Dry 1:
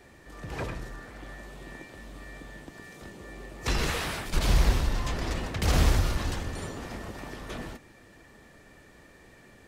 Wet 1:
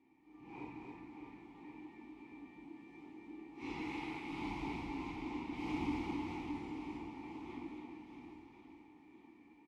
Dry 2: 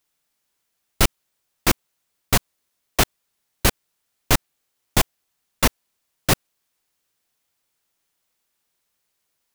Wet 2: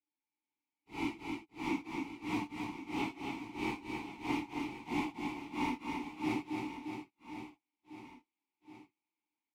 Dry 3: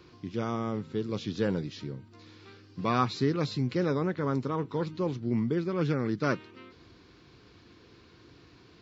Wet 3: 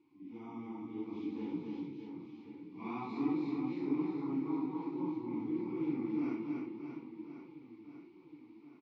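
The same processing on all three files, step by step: phase scrambler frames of 0.2 s; AGC gain up to 5 dB; vowel filter u; reverse bouncing-ball echo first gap 0.27 s, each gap 1.3×, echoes 5; gain -4 dB

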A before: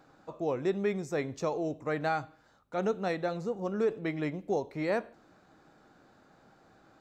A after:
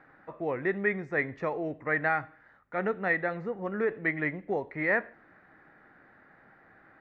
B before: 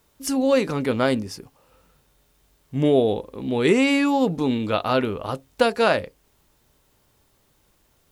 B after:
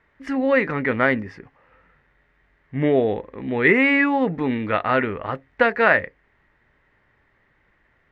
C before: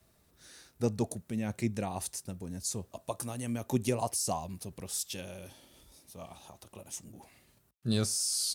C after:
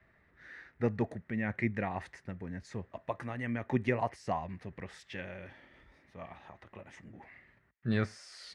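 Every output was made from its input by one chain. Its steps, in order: synth low-pass 1900 Hz, resonance Q 6.7; gain -1 dB

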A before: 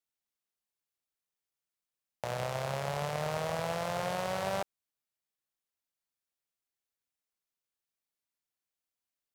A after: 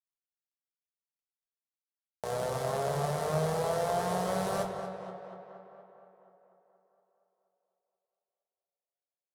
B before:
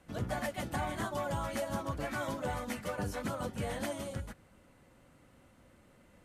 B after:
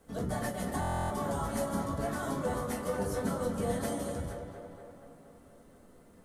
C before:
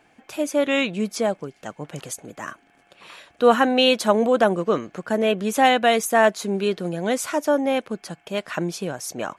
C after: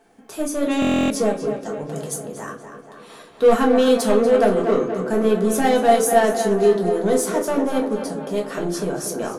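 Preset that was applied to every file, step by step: fifteen-band EQ 400 Hz +6 dB, 2500 Hz -9 dB, 10000 Hz +7 dB; in parallel at -3.5 dB: hard clip -19.5 dBFS; on the sum: bit-crush 12-bit; soft clip -5.5 dBFS; on a send: tape echo 0.238 s, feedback 69%, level -7 dB, low-pass 3300 Hz; on the sum: shoebox room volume 190 m³, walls furnished, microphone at 1.6 m; stuck buffer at 0.8, samples 1024, times 12; gain -6.5 dB

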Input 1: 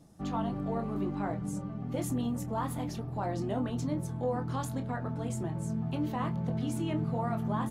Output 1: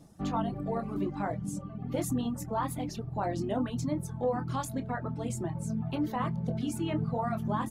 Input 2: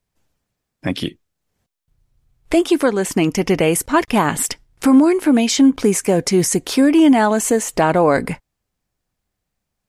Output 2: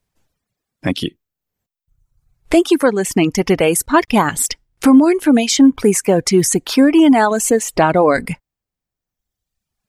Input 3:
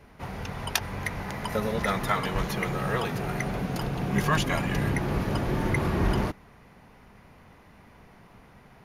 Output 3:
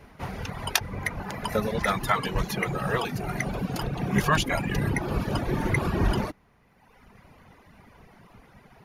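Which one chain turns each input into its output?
reverb removal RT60 1.3 s; gain +3 dB

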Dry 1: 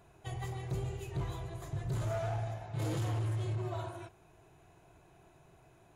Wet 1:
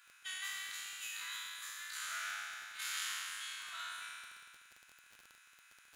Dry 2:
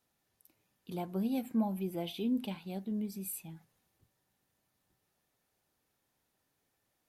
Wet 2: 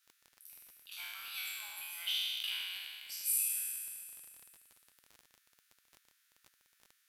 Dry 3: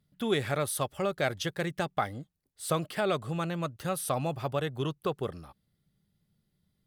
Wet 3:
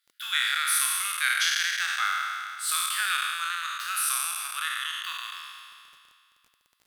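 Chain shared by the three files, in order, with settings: spectral trails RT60 2.24 s; elliptic high-pass 1400 Hz, stop band 80 dB; crackle 30/s -48 dBFS; gain +6 dB

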